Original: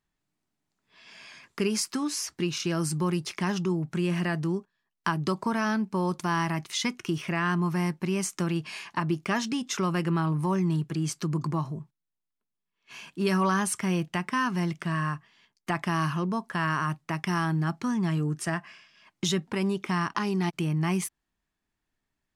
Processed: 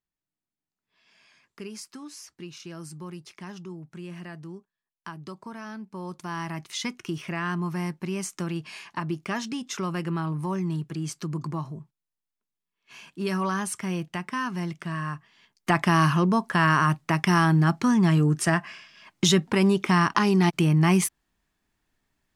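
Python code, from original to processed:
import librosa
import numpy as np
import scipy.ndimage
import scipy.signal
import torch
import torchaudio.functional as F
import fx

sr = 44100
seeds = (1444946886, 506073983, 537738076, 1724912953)

y = fx.gain(x, sr, db=fx.line((5.7, -12.0), (6.75, -2.5), (15.05, -2.5), (15.73, 7.0)))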